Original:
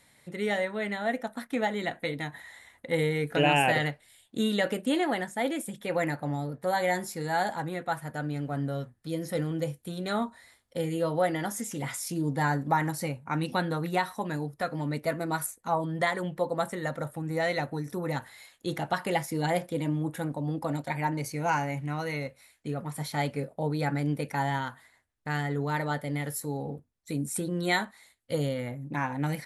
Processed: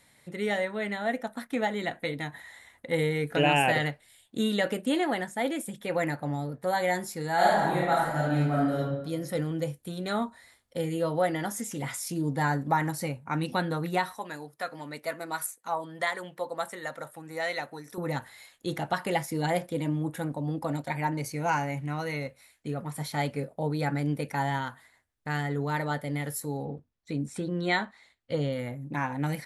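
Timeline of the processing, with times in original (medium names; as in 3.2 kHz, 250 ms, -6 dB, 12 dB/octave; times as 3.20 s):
7.35–8.78 s: reverb throw, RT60 1 s, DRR -6 dB
14.16–17.98 s: high-pass 780 Hz 6 dB/octave
26.65–28.53 s: low-pass 4.7 kHz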